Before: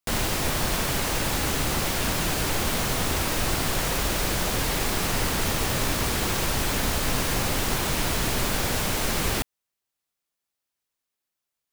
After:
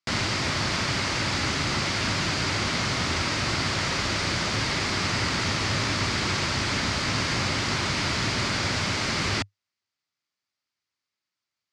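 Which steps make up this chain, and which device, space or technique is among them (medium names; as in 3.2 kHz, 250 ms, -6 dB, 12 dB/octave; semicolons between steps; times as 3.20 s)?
car door speaker (cabinet simulation 88–6600 Hz, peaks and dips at 100 Hz +7 dB, 470 Hz -6 dB, 750 Hz -4 dB, 1.3 kHz +3 dB, 2.1 kHz +5 dB, 4.7 kHz +6 dB)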